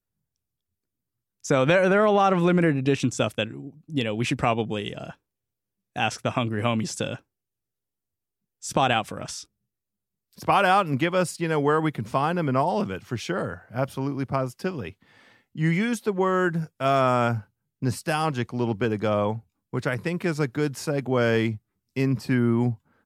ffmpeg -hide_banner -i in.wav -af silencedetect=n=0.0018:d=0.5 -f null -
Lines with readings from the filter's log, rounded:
silence_start: 0.00
silence_end: 1.40 | silence_duration: 1.40
silence_start: 5.15
silence_end: 5.96 | silence_duration: 0.80
silence_start: 7.21
silence_end: 8.62 | silence_duration: 1.41
silence_start: 9.45
silence_end: 10.33 | silence_duration: 0.87